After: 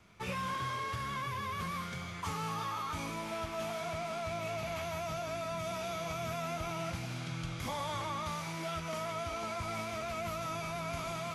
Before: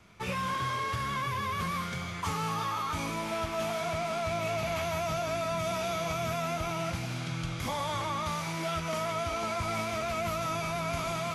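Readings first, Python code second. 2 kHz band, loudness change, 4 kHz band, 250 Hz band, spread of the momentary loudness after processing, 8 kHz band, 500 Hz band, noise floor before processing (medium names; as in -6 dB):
-5.5 dB, -5.5 dB, -5.5 dB, -5.5 dB, 2 LU, -5.5 dB, -5.5 dB, -36 dBFS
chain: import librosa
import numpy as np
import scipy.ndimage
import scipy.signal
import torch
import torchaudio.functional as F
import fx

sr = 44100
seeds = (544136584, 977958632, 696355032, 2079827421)

y = fx.rider(x, sr, range_db=10, speed_s=2.0)
y = y * 10.0 ** (-5.5 / 20.0)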